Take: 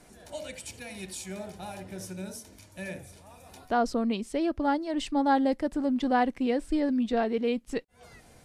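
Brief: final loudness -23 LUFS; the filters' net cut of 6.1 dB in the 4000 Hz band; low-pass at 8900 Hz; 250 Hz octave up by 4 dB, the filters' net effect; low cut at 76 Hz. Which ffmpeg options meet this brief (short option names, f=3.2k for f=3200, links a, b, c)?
-af "highpass=76,lowpass=8.9k,equalizer=f=250:t=o:g=4.5,equalizer=f=4k:t=o:g=-8.5,volume=2.5dB"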